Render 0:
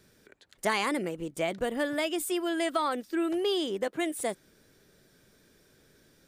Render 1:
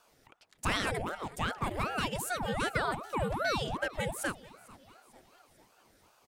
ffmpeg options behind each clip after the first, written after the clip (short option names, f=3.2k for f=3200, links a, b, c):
-af "bandreject=f=50:t=h:w=6,bandreject=f=100:t=h:w=6,bandreject=f=150:t=h:w=6,bandreject=f=200:t=h:w=6,bandreject=f=250:t=h:w=6,bandreject=f=300:t=h:w=6,bandreject=f=350:t=h:w=6,aecho=1:1:446|892|1338|1784:0.0891|0.0499|0.0279|0.0157,aeval=exprs='val(0)*sin(2*PI*610*n/s+610*0.8/2.6*sin(2*PI*2.6*n/s))':c=same"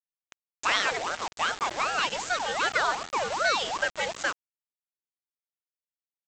-af "highpass=650,aresample=16000,acrusher=bits=6:mix=0:aa=0.000001,aresample=44100,volume=7.5dB"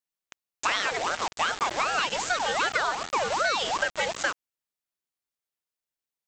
-af "acompressor=threshold=-26dB:ratio=6,volume=4dB"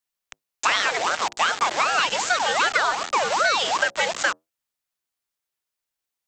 -filter_complex "[0:a]acrossover=split=100|580|2700[a][b][c][d];[a]aeval=exprs='(mod(708*val(0)+1,2)-1)/708':c=same[e];[b]flanger=delay=7.9:depth=7.7:regen=-67:speed=0.4:shape=sinusoidal[f];[e][f][c][d]amix=inputs=4:normalize=0,volume=5.5dB"